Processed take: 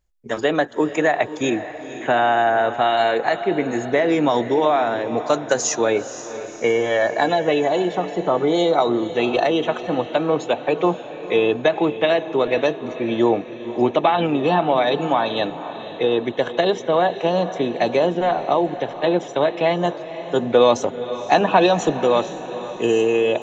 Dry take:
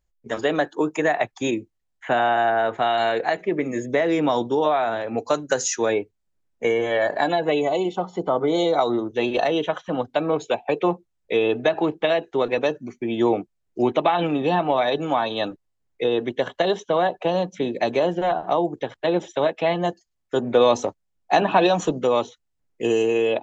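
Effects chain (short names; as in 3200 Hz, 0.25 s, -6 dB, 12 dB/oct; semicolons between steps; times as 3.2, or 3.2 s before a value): tempo 1×; diffused feedback echo 0.503 s, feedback 50%, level -12.5 dB; gain +2.5 dB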